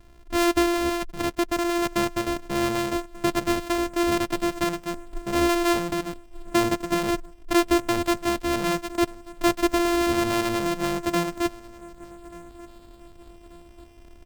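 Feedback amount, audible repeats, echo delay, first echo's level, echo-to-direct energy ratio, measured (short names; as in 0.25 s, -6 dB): 45%, 2, 1.187 s, -22.0 dB, -21.0 dB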